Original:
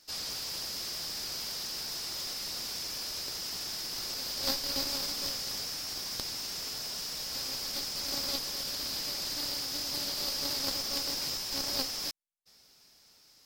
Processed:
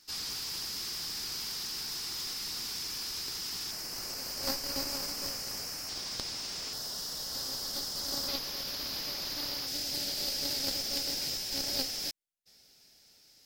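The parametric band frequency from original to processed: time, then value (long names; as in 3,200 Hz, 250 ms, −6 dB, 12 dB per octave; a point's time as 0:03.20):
parametric band −10.5 dB 0.5 octaves
590 Hz
from 0:03.71 3,600 Hz
from 0:05.89 13,000 Hz
from 0:06.73 2,400 Hz
from 0:08.28 8,200 Hz
from 0:09.67 1,100 Hz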